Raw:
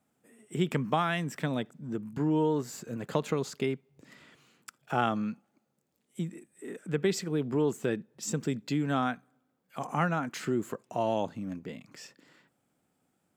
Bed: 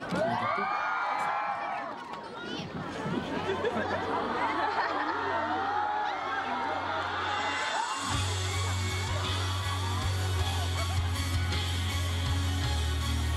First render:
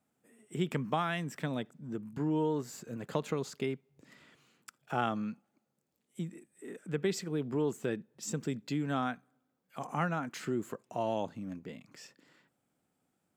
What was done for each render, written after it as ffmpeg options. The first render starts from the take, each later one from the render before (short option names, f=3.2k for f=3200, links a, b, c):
-af "volume=-4dB"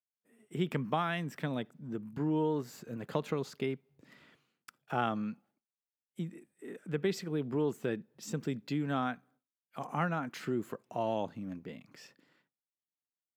-af "agate=range=-33dB:threshold=-59dB:ratio=3:detection=peak,equalizer=f=7.5k:t=o:w=0.67:g=-7.5"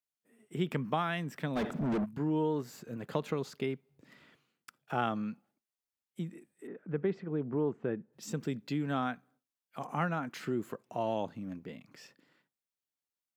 -filter_complex "[0:a]asplit=3[a][b][c];[a]afade=t=out:st=1.55:d=0.02[d];[b]asplit=2[e][f];[f]highpass=f=720:p=1,volume=40dB,asoftclip=type=tanh:threshold=-23.5dB[g];[e][g]amix=inputs=2:normalize=0,lowpass=f=1.1k:p=1,volume=-6dB,afade=t=in:st=1.55:d=0.02,afade=t=out:st=2.04:d=0.02[h];[c]afade=t=in:st=2.04:d=0.02[i];[d][h][i]amix=inputs=3:normalize=0,asettb=1/sr,asplit=3[j][k][l];[j]atrim=end=6.674[m];[k]atrim=start=6.67:end=8.13,asetpts=PTS-STARTPTS,afade=t=in:d=0.004:c=qsin,afade=t=out:st=1.456:d=0.004:c=qsin,lowpass=1.5k[n];[l]atrim=start=8.126[o];[m][n]acrossfade=d=0.004:c1=hsin:c2=qsin[p];[p][o]acrossfade=d=0.004:c1=qsin:c2=hsin"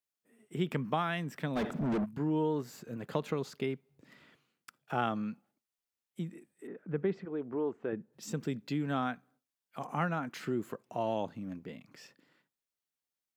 -filter_complex "[0:a]asettb=1/sr,asplit=3[a][b][c];[a]atrim=end=7.254[d];[b]atrim=start=7.25:end=7.93,asetpts=PTS-STARTPTS,afade=t=in:d=0.004:c=qsin,afade=t=out:st=0.676:d=0.004:c=qsin,equalizer=f=150:w=1.5:g=-13.5[e];[c]atrim=start=7.926[f];[d][e]acrossfade=d=0.004:c1=hsin:c2=qsin[g];[g][f]acrossfade=d=0.004:c1=qsin:c2=hsin"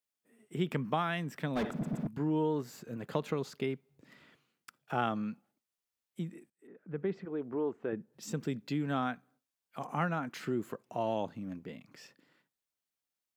-filter_complex "[0:a]asplit=5[a][b][c][d][e];[a]atrim=end=1.832[f];[b]atrim=start=1.708:end=1.832[g];[c]atrim=start=1.708:end=1.832[h];[d]atrim=start=2.068:end=6.5,asetpts=PTS-STARTPTS,afade=t=out:st=4.428:d=0.004:c=hsin:silence=0.0707946[i];[e]atrim=start=6.5,asetpts=PTS-STARTPTS,afade=t=in:d=0.77:silence=0.0707946[j];[f][g]acrossfade=d=0.004:c1=hsin:c2=hsin[k];[k][h]acrossfade=d=0.004:c1=hsin:c2=hsin[l];[i][j]concat=n=2:v=0:a=1[m];[l][m]acrossfade=d=0.004:c1=hsin:c2=hsin"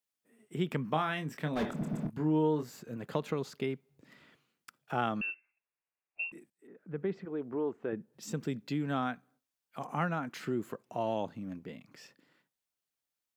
-filter_complex "[0:a]asettb=1/sr,asplit=3[a][b][c];[a]atrim=end=0.914[d];[b]atrim=start=0.91:end=2.69,asetpts=PTS-STARTPTS,afade=t=in:d=0.004:c=qsin,afade=t=out:st=1.776:d=0.004:c=qsin,asplit=2[e][f];[f]adelay=26,volume=-8dB[g];[e][g]amix=inputs=2:normalize=0,atrim=end_sample=78498[h];[c]atrim=start=2.686[i];[d][h]acrossfade=d=0.004:c1=hsin:c2=qsin[j];[j][i]acrossfade=d=0.004:c1=qsin:c2=hsin,asettb=1/sr,asplit=3[k][l][m];[k]atrim=end=5.214[n];[l]atrim=start=5.21:end=6.32,asetpts=PTS-STARTPTS,afade=t=in:d=0.004:c=qsin,afade=t=out:st=1.106:d=0.004:c=qsin,lowpass=f=2.5k:t=q:w=0.5098,lowpass=f=2.5k:t=q:w=0.6013,lowpass=f=2.5k:t=q:w=0.9,lowpass=f=2.5k:t=q:w=2.563,afreqshift=-2900[o];[m]atrim=start=6.316[p];[n][o]acrossfade=d=0.004:c1=hsin:c2=qsin[q];[q][p]acrossfade=d=0.004:c1=qsin:c2=hsin"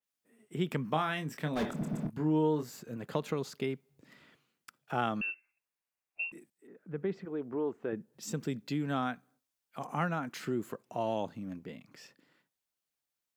-af "adynamicequalizer=threshold=0.00282:dfrequency=4200:dqfactor=0.7:tfrequency=4200:tqfactor=0.7:attack=5:release=100:ratio=0.375:range=2:mode=boostabove:tftype=highshelf"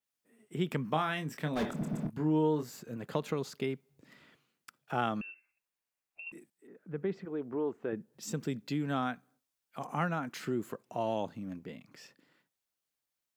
-filter_complex "[0:a]asettb=1/sr,asplit=3[a][b][c];[a]atrim=end=5.214[d];[b]atrim=start=5.21:end=6.27,asetpts=PTS-STARTPTS,afade=t=in:d=0.004:c=qsin,afade=t=out:st=1.056:d=0.004:c=qsin,acompressor=threshold=-43dB:ratio=12:attack=3.2:release=140:knee=1:detection=peak[e];[c]atrim=start=6.266[f];[d][e]acrossfade=d=0.004:c1=hsin:c2=qsin[g];[g][f]acrossfade=d=0.004:c1=qsin:c2=hsin"